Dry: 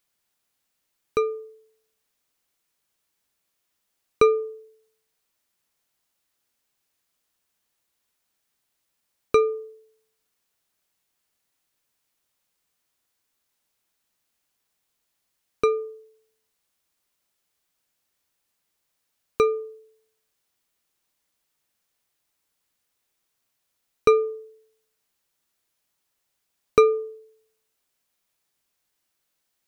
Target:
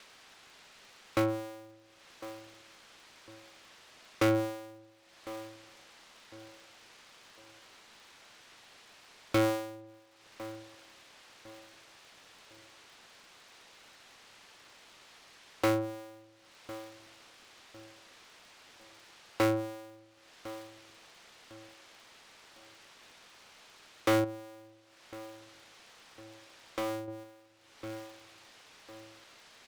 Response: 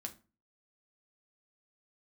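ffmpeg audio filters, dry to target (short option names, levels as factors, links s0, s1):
-filter_complex "[0:a]acompressor=mode=upward:threshold=0.0398:ratio=2.5,agate=range=0.0224:threshold=0.002:ratio=3:detection=peak,highpass=320,lowpass=4300,asoftclip=type=tanh:threshold=0.075,asplit=2[s0][s1];[s1]adelay=1054,lowpass=f=1500:p=1,volume=0.168,asplit=2[s2][s3];[s3]adelay=1054,lowpass=f=1500:p=1,volume=0.35,asplit=2[s4][s5];[s5]adelay=1054,lowpass=f=1500:p=1,volume=0.35[s6];[s0][s2][s4][s6]amix=inputs=4:normalize=0,asettb=1/sr,asplit=3[s7][s8][s9];[s7]atrim=end=24.244[s10];[s8]atrim=start=24.24:end=27.08,asetpts=PTS-STARTPTS,afade=t=in:d=0.004:c=qsin,afade=t=out:st=2.836:d=0.004:c=qsin,acompressor=threshold=0.00355:ratio=1.5[s11];[s9]atrim=start=27.076[s12];[s10][s11]acrossfade=d=0.004:c1=hsin:c2=qsin[s13];[s13][s12]acrossfade=d=0.004:c1=qsin:c2=hsin,aeval=exprs='val(0)*sgn(sin(2*PI*110*n/s))':c=same"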